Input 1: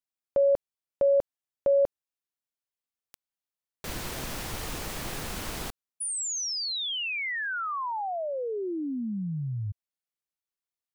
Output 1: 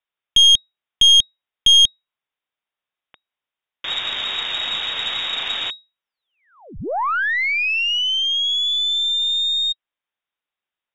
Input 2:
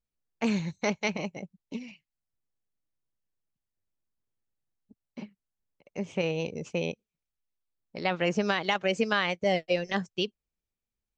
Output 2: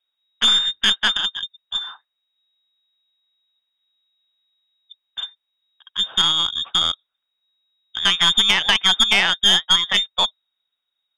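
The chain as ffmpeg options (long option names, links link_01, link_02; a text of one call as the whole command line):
ffmpeg -i in.wav -af "lowpass=frequency=3200:width_type=q:width=0.5098,lowpass=frequency=3200:width_type=q:width=0.6013,lowpass=frequency=3200:width_type=q:width=0.9,lowpass=frequency=3200:width_type=q:width=2.563,afreqshift=-3800,aeval=exprs='0.282*(cos(1*acos(clip(val(0)/0.282,-1,1)))-cos(1*PI/2))+0.0398*(cos(4*acos(clip(val(0)/0.282,-1,1)))-cos(4*PI/2))+0.0224*(cos(5*acos(clip(val(0)/0.282,-1,1)))-cos(5*PI/2))':channel_layout=same,volume=8.5dB" out.wav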